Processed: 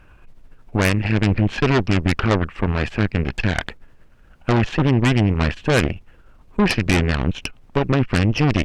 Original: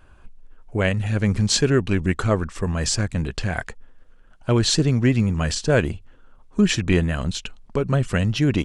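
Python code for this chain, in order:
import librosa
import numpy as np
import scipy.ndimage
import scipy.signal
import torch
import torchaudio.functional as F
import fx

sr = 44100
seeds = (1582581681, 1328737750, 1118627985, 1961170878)

y = fx.env_lowpass_down(x, sr, base_hz=2700.0, full_db=-18.5)
y = fx.high_shelf_res(y, sr, hz=3500.0, db=-10.5, q=3.0)
y = fx.dmg_noise_colour(y, sr, seeds[0], colour='brown', level_db=-51.0)
y = fx.cheby_harmonics(y, sr, harmonics=(8,), levels_db=(-13,), full_scale_db=-5.0)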